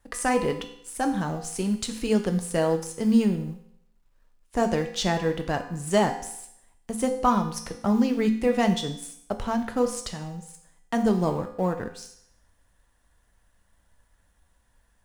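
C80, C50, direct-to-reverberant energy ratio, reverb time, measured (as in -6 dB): 12.5 dB, 9.5 dB, 5.0 dB, 0.70 s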